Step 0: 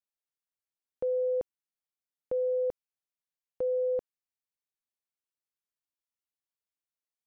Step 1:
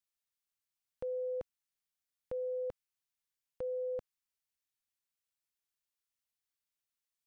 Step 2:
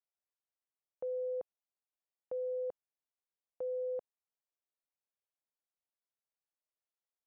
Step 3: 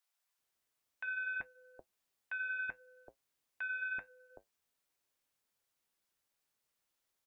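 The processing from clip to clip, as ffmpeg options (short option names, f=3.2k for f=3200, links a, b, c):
-af "equalizer=f=420:w=0.58:g=-12,volume=3dB"
-af "bandpass=f=620:t=q:w=1.5:csg=0,volume=1.5dB"
-filter_complex "[0:a]aeval=exprs='0.0224*sin(PI/2*2.51*val(0)/0.0224)':c=same,flanger=delay=6.4:depth=5.2:regen=-62:speed=0.66:shape=triangular,acrossover=split=660[a][b];[a]adelay=380[c];[c][b]amix=inputs=2:normalize=0,volume=3.5dB"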